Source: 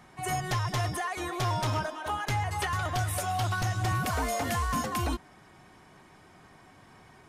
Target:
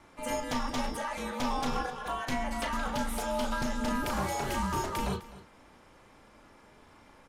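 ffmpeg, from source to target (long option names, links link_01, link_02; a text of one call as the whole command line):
ffmpeg -i in.wav -filter_complex "[0:a]bandreject=frequency=1800:width=16,aeval=exprs='val(0)*sin(2*PI*130*n/s)':channel_layout=same,acrossover=split=6500[link_01][link_02];[link_01]asplit=2[link_03][link_04];[link_04]adelay=36,volume=-5.5dB[link_05];[link_03][link_05]amix=inputs=2:normalize=0[link_06];[link_02]asoftclip=type=tanh:threshold=-39dB[link_07];[link_06][link_07]amix=inputs=2:normalize=0,aecho=1:1:256:0.133" out.wav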